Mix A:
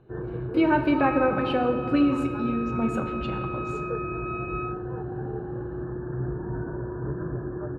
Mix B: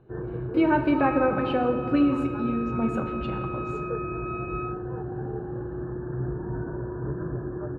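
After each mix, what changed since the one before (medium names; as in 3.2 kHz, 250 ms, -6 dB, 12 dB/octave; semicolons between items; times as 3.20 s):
master: add treble shelf 3.8 kHz -8.5 dB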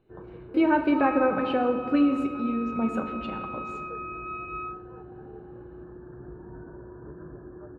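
first sound -10.0 dB; master: add peaking EQ 130 Hz -10 dB 0.25 oct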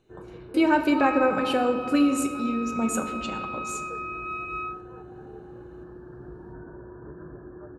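master: remove distance through air 380 m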